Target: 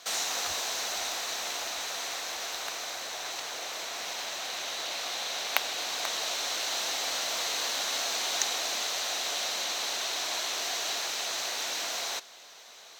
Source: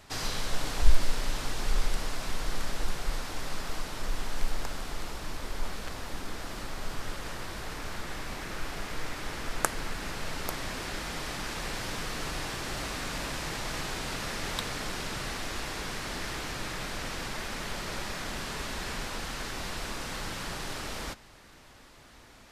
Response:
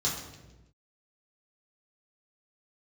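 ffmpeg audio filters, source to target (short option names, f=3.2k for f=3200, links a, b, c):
-af "highpass=320,equalizer=f=400:t=q:w=4:g=7,equalizer=f=2.3k:t=q:w=4:g=10,equalizer=f=3.5k:t=q:w=4:g=9,equalizer=f=5.7k:t=q:w=4:g=-10,lowpass=f=9.4k:w=0.5412,lowpass=f=9.4k:w=1.3066,asetrate=76440,aresample=44100,volume=2dB"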